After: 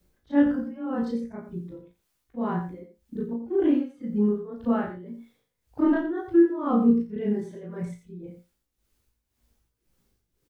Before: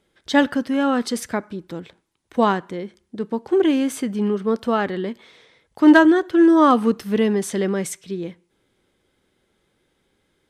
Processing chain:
every overlapping window played backwards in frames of 77 ms
RIAA equalisation playback
reverb reduction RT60 1.9 s
high-shelf EQ 3,200 Hz −10.5 dB
bit-depth reduction 12 bits, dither triangular
amplitude tremolo 1.9 Hz, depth 77%
tuned comb filter 58 Hz, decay 0.23 s, harmonics all, mix 90%
single-tap delay 86 ms −9.5 dB
level +2 dB

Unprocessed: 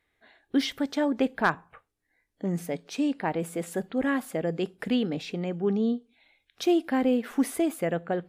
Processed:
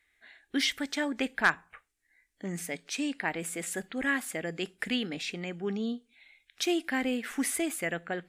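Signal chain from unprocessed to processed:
octave-band graphic EQ 125/250/500/1,000/2,000/8,000 Hz −11/−3/−7/−5/+7/+8 dB

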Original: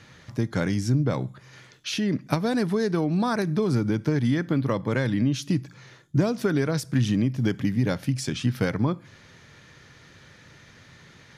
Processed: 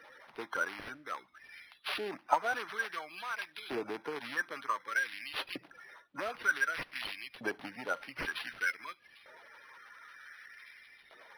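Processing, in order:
spectral magnitudes quantised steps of 30 dB
auto-filter high-pass saw up 0.54 Hz 630–3,000 Hz
linearly interpolated sample-rate reduction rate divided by 6×
level −2.5 dB

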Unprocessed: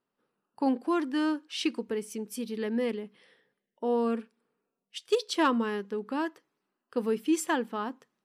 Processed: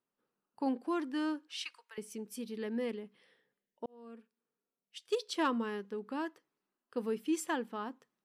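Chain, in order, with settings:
0:01.57–0:01.98: high-pass filter 1,000 Hz 24 dB per octave
0:03.86–0:05.24: fade in
level −6.5 dB

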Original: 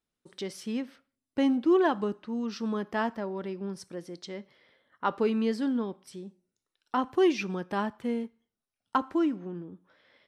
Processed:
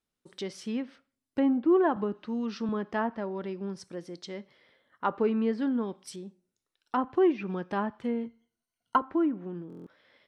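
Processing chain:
0:08.25–0:09.01: EQ curve with evenly spaced ripples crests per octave 1.9, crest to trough 12 dB
treble cut that deepens with the level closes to 1,600 Hz, closed at −24.5 dBFS
0:05.24–0:06.16: high-shelf EQ 3,100 Hz +10 dB
buffer that repeats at 0:09.68, samples 1,024, times 7
0:01.96–0:02.69: multiband upward and downward compressor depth 40%

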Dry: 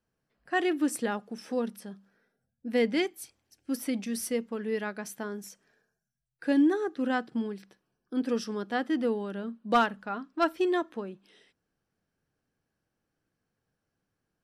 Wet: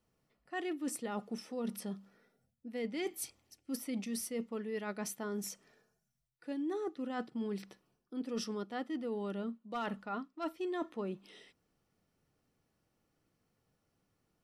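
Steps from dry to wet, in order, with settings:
reversed playback
downward compressor 16 to 1, threshold −38 dBFS, peak gain reduction 20.5 dB
reversed playback
Butterworth band-reject 1,600 Hz, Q 7.2
level +3.5 dB

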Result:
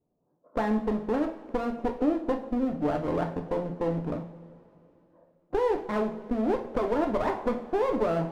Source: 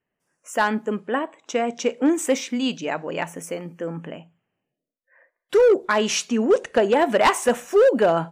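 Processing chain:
Bessel low-pass filter 560 Hz, order 8
downward compressor 6 to 1, threshold −28 dBFS, peak gain reduction 13 dB
asymmetric clip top −41.5 dBFS
coupled-rooms reverb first 0.44 s, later 3.1 s, from −18 dB, DRR 3 dB
level +6.5 dB

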